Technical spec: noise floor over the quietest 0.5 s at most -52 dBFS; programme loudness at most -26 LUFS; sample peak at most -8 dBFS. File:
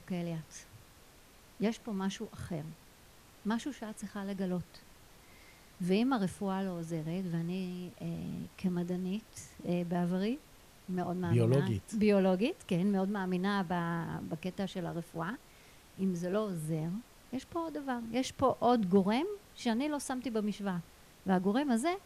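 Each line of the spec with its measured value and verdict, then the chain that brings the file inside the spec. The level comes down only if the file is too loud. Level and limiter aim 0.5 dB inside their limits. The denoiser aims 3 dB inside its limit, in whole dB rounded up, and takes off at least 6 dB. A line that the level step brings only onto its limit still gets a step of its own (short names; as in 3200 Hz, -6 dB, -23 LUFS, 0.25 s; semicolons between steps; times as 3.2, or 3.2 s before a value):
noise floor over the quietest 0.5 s -58 dBFS: OK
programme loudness -34.5 LUFS: OK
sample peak -16.5 dBFS: OK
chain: none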